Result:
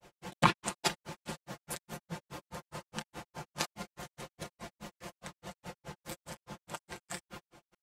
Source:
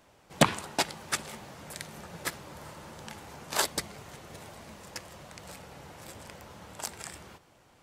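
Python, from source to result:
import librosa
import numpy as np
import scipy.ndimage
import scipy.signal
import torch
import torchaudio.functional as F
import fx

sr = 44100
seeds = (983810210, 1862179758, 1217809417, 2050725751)

y = fx.granulator(x, sr, seeds[0], grain_ms=121.0, per_s=4.8, spray_ms=100.0, spread_st=0)
y = y + 0.61 * np.pad(y, (int(5.7 * sr / 1000.0), 0))[:len(y)]
y = y * librosa.db_to_amplitude(4.5)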